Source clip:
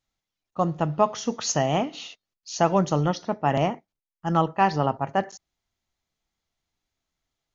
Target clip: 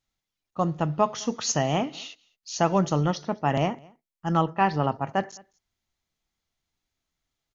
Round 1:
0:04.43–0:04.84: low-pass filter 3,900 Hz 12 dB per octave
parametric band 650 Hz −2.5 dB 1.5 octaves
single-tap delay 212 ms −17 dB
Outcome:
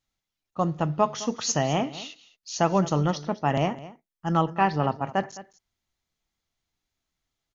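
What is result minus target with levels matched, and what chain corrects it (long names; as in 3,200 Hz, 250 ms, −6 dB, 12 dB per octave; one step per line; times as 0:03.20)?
echo-to-direct +9 dB
0:04.43–0:04.84: low-pass filter 3,900 Hz 12 dB per octave
parametric band 650 Hz −2.5 dB 1.5 octaves
single-tap delay 212 ms −26 dB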